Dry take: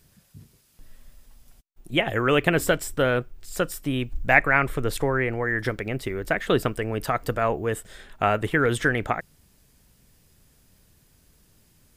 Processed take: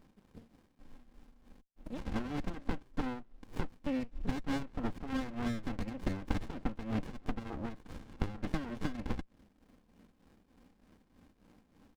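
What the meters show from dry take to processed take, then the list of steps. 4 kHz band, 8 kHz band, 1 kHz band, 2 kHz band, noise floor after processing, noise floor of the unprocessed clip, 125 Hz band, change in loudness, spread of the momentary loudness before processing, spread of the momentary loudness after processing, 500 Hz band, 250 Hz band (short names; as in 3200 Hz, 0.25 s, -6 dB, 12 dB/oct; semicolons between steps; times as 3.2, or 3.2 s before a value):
-17.5 dB, -22.0 dB, -18.0 dB, -23.5 dB, -70 dBFS, -61 dBFS, -12.5 dB, -15.5 dB, 9 LU, 10 LU, -20.5 dB, -8.0 dB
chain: block floating point 7-bit; treble ducked by the level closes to 2300 Hz, closed at -19 dBFS; three-band isolator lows -15 dB, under 160 Hz, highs -12 dB, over 4800 Hz; comb 3.8 ms, depth 96%; compressor 10:1, threshold -32 dBFS, peak gain reduction 21.5 dB; tremolo 3.3 Hz, depth 66%; dynamic EQ 2300 Hz, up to +4 dB, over -53 dBFS, Q 1.3; running maximum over 65 samples; gain +5 dB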